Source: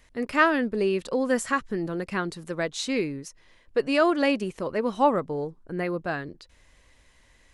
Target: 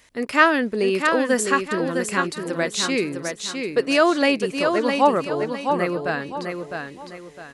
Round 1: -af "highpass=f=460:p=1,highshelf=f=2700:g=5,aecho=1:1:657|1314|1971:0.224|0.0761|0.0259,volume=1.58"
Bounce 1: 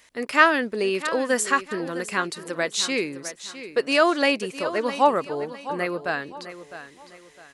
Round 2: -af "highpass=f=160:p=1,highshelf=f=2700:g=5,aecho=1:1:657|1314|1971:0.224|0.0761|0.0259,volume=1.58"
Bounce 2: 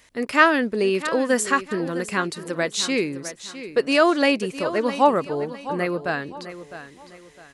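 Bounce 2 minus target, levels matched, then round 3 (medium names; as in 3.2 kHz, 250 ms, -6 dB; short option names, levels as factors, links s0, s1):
echo-to-direct -7.5 dB
-af "highpass=f=160:p=1,highshelf=f=2700:g=5,aecho=1:1:657|1314|1971|2628:0.531|0.181|0.0614|0.0209,volume=1.58"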